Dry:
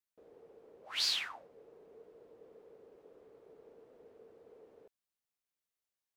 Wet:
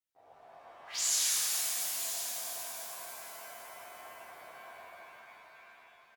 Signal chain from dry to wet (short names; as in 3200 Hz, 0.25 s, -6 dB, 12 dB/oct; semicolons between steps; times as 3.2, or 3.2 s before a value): pitch shift +7.5 st; echo 0.991 s -12 dB; shimmer reverb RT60 3.5 s, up +7 st, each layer -2 dB, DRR -9 dB; gain -4.5 dB